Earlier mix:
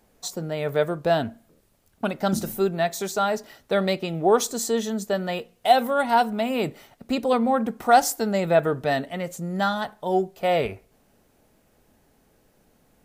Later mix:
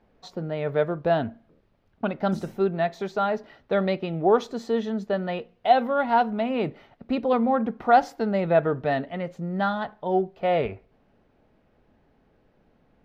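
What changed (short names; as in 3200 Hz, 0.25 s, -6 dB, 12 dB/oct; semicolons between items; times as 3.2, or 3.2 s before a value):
speech: add air absorption 300 m; background -7.5 dB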